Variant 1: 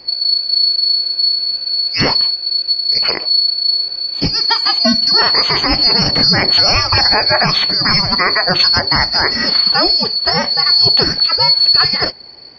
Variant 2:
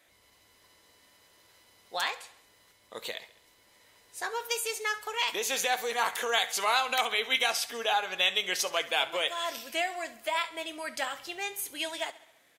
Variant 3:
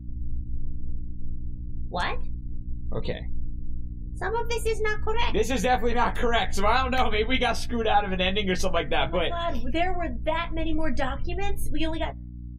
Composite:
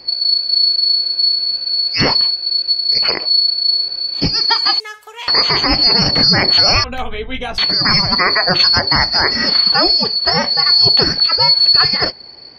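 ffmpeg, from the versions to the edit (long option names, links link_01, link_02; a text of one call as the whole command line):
ffmpeg -i take0.wav -i take1.wav -i take2.wav -filter_complex "[0:a]asplit=3[link_01][link_02][link_03];[link_01]atrim=end=4.802[link_04];[1:a]atrim=start=4.798:end=5.282[link_05];[link_02]atrim=start=5.278:end=6.842[link_06];[2:a]atrim=start=6.838:end=7.582[link_07];[link_03]atrim=start=7.578[link_08];[link_04][link_05]acrossfade=duration=0.004:curve1=hsin:curve2=hsin[link_09];[link_09][link_06]acrossfade=duration=0.004:curve1=hsin:curve2=hsin[link_10];[link_10][link_07]acrossfade=duration=0.004:curve1=hsin:curve2=hsin[link_11];[link_11][link_08]acrossfade=duration=0.004:curve1=hsin:curve2=hsin" out.wav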